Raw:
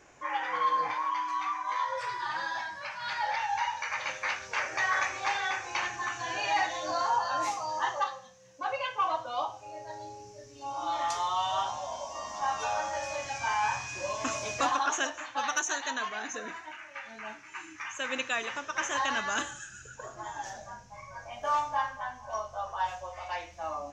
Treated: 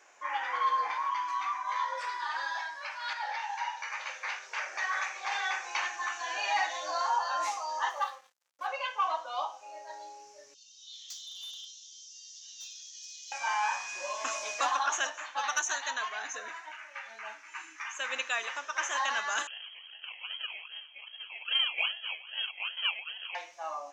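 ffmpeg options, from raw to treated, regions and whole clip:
-filter_complex "[0:a]asettb=1/sr,asplit=3[a][b][c];[a]atrim=end=3.134[d];[b]atrim=start=3.13:end=5.32,asetpts=PTS-STARTPTS,afade=t=in:d=0.004:c=qsin,afade=t=out:st=2.186:d=0.004:c=qsin,flanger=delay=1.2:depth=9.8:regen=-43:speed=2:shape=sinusoidal,asplit=2[e][f];[f]adelay=49,volume=-11dB[g];[e][g]amix=inputs=2:normalize=0,atrim=end_sample=96579[h];[c]atrim=start=5.316[i];[d][h]acrossfade=d=0.004:c1=hsin:c2=qsin[j];[j][i]acrossfade=d=0.004:c1=qsin:c2=hsin,asettb=1/sr,asplit=3[k][l][m];[k]atrim=end=7.904[n];[l]atrim=start=7.9:end=8.67,asetpts=PTS-STARTPTS,afade=t=in:d=0.004:c=qsin,afade=t=out:st=0.766:d=0.004:c=qsin,equalizer=f=7.8k:w=0.33:g=-2.5,aeval=exprs='sgn(val(0))*max(abs(val(0))-0.00237,0)':c=same[o];[m]atrim=start=8.666[p];[n][o]acrossfade=d=0.004:c1=hsin:c2=qsin[q];[q][p]acrossfade=d=0.004:c1=qsin:c2=hsin,asettb=1/sr,asplit=3[r][s][t];[r]atrim=end=10.544[u];[s]atrim=start=10.54:end=13.32,asetpts=PTS-STARTPTS,afade=t=in:d=0.004:c=qsin,afade=t=out:st=2.776:d=0.004:c=qsin,asuperpass=centerf=4900:order=8:qfactor=1.2,asoftclip=type=hard:threshold=-38dB,aeval=exprs='val(0)+0.000398*(sin(2*PI*50*n/s)+sin(2*PI*2*50*n/s)/2+sin(2*PI*3*50*n/s)/3+sin(2*PI*4*50*n/s)/4+sin(2*PI*5*50*n/s)/5)':c=same[v];[t]atrim=start=13.316[w];[u][v]acrossfade=d=0.004:c1=hsin:c2=qsin[x];[x][w]acrossfade=d=0.004:c1=qsin:c2=hsin,asettb=1/sr,asplit=3[y][z][aa];[y]atrim=end=19.474[ab];[z]atrim=start=19.47:end=23.35,asetpts=PTS-STARTPTS,afade=t=in:d=0.004:c=qsin,afade=t=out:st=3.876:d=0.004:c=qsin,acrossover=split=2400[ac][ad];[ac]adelay=40[ae];[ae][ad]amix=inputs=2:normalize=0,atrim=end_sample=171108,acrusher=samples=33:mix=1:aa=0.000001:lfo=1:lforange=19.8:lforate=2.5,lowpass=f=2.8k:t=q:w=0.5098,lowpass=f=2.8k:t=q:w=0.6013,lowpass=f=2.8k:t=q:w=0.9,lowpass=f=2.8k:t=q:w=2.563,afreqshift=-3300[af];[aa]atrim=start=23.346[ag];[ab][af]acrossfade=d=0.004:c1=hsin:c2=qsin[ah];[ah][ag]acrossfade=d=0.004:c1=qsin:c2=hsin,highpass=670,acontrast=46,volume=-6dB"

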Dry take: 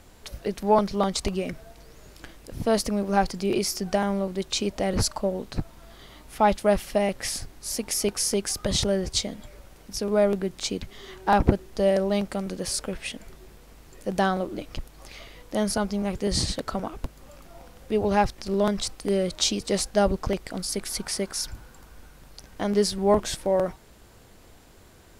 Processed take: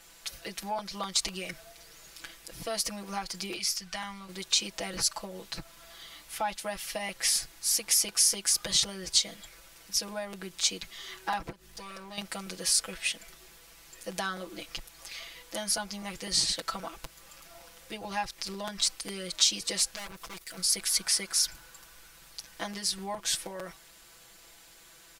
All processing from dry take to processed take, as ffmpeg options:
-filter_complex "[0:a]asettb=1/sr,asplit=3[a][b][c];[a]atrim=end=3.564[d];[b]atrim=start=3.56:end=4.29,asetpts=PTS-STARTPTS,afade=t=in:d=0.004:c=qsin,afade=t=out:st=0.726:d=0.004:c=qsin,lowpass=f=3.9k:p=1,equalizer=f=410:t=o:w=2.3:g=-14.5[e];[c]atrim=start=4.286[f];[d][e]acrossfade=d=0.004:c1=hsin:c2=qsin[g];[g][f]acrossfade=d=0.004:c1=qsin:c2=hsin,asettb=1/sr,asplit=3[h][i][j];[h]atrim=end=11.524[k];[i]atrim=start=11.52:end=12.18,asetpts=PTS-STARTPTS,afade=t=in:d=0.004:c=qsin,afade=t=out:st=0.656:d=0.004:c=qsin,aeval=exprs='val(0)+0.00794*(sin(2*PI*50*n/s)+sin(2*PI*2*50*n/s)/2+sin(2*PI*3*50*n/s)/3+sin(2*PI*4*50*n/s)/4+sin(2*PI*5*50*n/s)/5)':c=same,acompressor=threshold=-33dB:ratio=3:attack=3.2:release=140:knee=1:detection=peak,aeval=exprs='clip(val(0),-1,0.0133)':c=same[l];[j]atrim=start=12.176[m];[k][l]acrossfade=d=0.004:c1=hsin:c2=qsin[n];[n][m]acrossfade=d=0.004:c1=qsin:c2=hsin,asettb=1/sr,asplit=3[o][p][q];[o]atrim=end=19.954[r];[p]atrim=start=19.95:end=20.58,asetpts=PTS-STARTPTS,afade=t=in:d=0.004:c=qsin,afade=t=out:st=0.626:d=0.004:c=qsin,highshelf=f=8.9k:g=11,aeval=exprs='(tanh(50.1*val(0)+0.8)-tanh(0.8))/50.1':c=same[s];[q]atrim=start=20.576[t];[r][s]acrossfade=d=0.004:c1=hsin:c2=qsin[u];[u][t]acrossfade=d=0.004:c1=qsin:c2=hsin,acompressor=threshold=-24dB:ratio=6,tiltshelf=f=890:g=-9.5,aecho=1:1:6:0.99,volume=-7dB"

